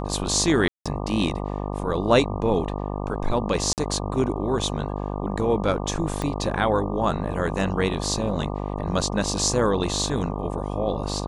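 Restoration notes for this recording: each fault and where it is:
buzz 50 Hz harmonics 24 -29 dBFS
0.68–0.86 s: dropout 176 ms
3.73–3.78 s: dropout 48 ms
6.22 s: pop -14 dBFS

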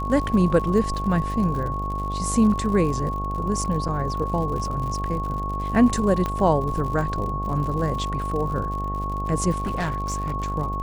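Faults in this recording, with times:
buzz 50 Hz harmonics 18 -29 dBFS
crackle 86 per s -31 dBFS
whine 1.1 kHz -28 dBFS
3.88–3.89 s: dropout 6.3 ms
6.26 s: pop -13 dBFS
9.54–10.35 s: clipped -21.5 dBFS

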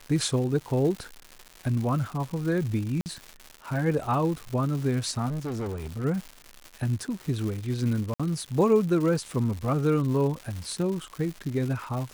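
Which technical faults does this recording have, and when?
crackle 290 per s -33 dBFS
3.01–3.06 s: dropout 49 ms
5.28–6.05 s: clipped -28.5 dBFS
8.14–8.20 s: dropout 56 ms

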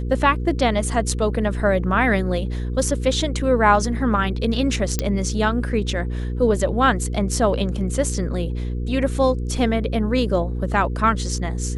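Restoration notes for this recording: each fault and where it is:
hum 60 Hz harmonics 8 -25 dBFS
4.99 s: pop -6 dBFS

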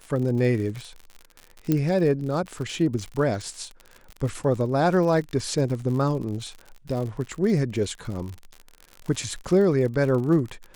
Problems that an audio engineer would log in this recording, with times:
crackle 57 per s -31 dBFS
1.72 s: pop -10 dBFS

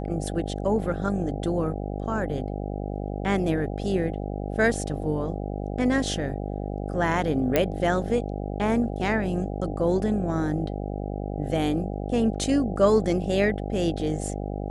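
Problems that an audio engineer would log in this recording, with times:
buzz 50 Hz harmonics 16 -31 dBFS
7.56 s: pop -7 dBFS

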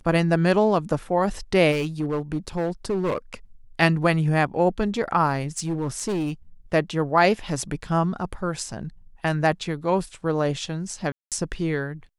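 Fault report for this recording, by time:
1.71–3.34 s: clipped -20 dBFS
5.58–6.32 s: clipped -21.5 dBFS
11.12–11.32 s: dropout 197 ms

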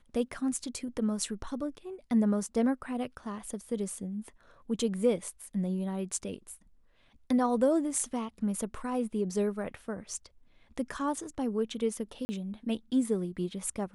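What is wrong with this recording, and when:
12.25–12.29 s: dropout 40 ms

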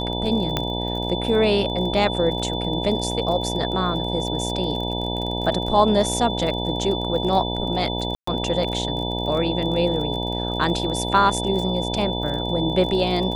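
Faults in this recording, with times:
buzz 60 Hz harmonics 16 -27 dBFS
crackle 31 per s -29 dBFS
whine 3.5 kHz -29 dBFS
0.57 s: pop -7 dBFS
8.15–8.27 s: dropout 124 ms

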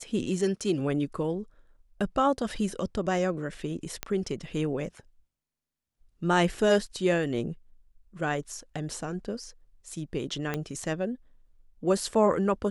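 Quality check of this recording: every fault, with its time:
4.03 s: pop -13 dBFS
10.54 s: pop -15 dBFS

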